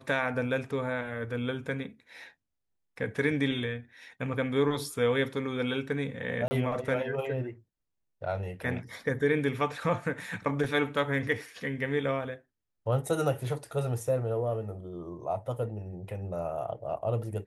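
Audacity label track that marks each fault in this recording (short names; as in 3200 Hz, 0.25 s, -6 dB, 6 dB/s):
6.480000	6.510000	gap 30 ms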